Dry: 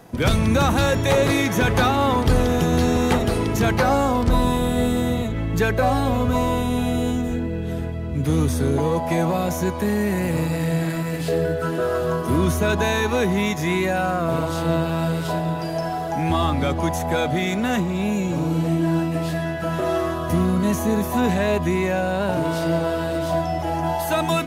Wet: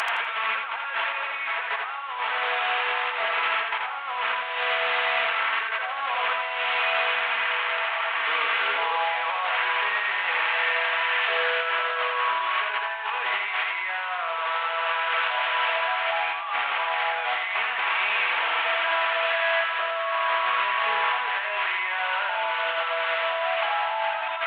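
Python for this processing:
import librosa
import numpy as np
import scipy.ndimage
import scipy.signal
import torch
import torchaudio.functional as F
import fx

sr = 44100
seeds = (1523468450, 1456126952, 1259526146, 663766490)

y = fx.delta_mod(x, sr, bps=16000, step_db=-24.0)
y = scipy.signal.sosfilt(scipy.signal.butter(4, 950.0, 'highpass', fs=sr, output='sos'), y)
y = y + 0.41 * np.pad(y, (int(4.4 * sr / 1000.0), 0))[:len(y)]
y = fx.over_compress(y, sr, threshold_db=-34.0, ratio=-1.0)
y = fx.echo_feedback(y, sr, ms=83, feedback_pct=30, wet_db=-4.0)
y = fx.doppler_dist(y, sr, depth_ms=0.45)
y = y * librosa.db_to_amplitude(6.0)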